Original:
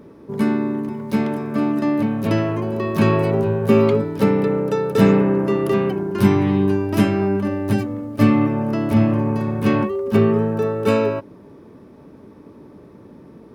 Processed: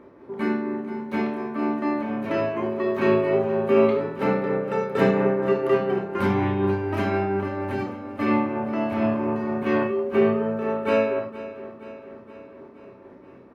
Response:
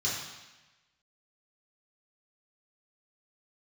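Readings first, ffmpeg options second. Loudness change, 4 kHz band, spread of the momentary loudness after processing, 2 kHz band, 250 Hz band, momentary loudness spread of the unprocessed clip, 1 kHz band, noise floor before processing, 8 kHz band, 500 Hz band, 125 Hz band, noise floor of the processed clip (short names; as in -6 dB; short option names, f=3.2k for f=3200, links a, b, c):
-5.0 dB, -6.5 dB, 11 LU, -1.0 dB, -7.0 dB, 7 LU, -1.5 dB, -44 dBFS, n/a, -2.5 dB, -10.5 dB, -47 dBFS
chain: -filter_complex "[0:a]tremolo=f=4.2:d=0.44,bass=f=250:g=-12,treble=f=4k:g=-14,asplit=2[a][b];[b]adelay=32,volume=-9dB[c];[a][c]amix=inputs=2:normalize=0,aecho=1:1:471|942|1413|1884|2355|2826:0.158|0.0935|0.0552|0.0326|0.0192|0.0113,asplit=2[d][e];[1:a]atrim=start_sample=2205,atrim=end_sample=4410[f];[e][f]afir=irnorm=-1:irlink=0,volume=-8.5dB[g];[d][g]amix=inputs=2:normalize=0"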